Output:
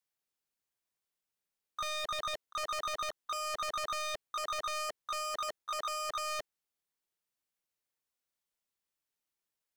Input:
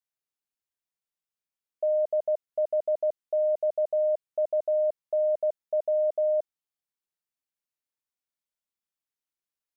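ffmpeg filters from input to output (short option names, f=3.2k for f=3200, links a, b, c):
-filter_complex "[0:a]equalizer=f=440:t=o:w=0.53:g=2,asoftclip=type=hard:threshold=-29dB,asplit=2[a][b];[b]asetrate=88200,aresample=44100,atempo=0.5,volume=-5dB[c];[a][c]amix=inputs=2:normalize=0,aeval=exprs='0.0237*(abs(mod(val(0)/0.0237+3,4)-2)-1)':c=same,volume=1.5dB"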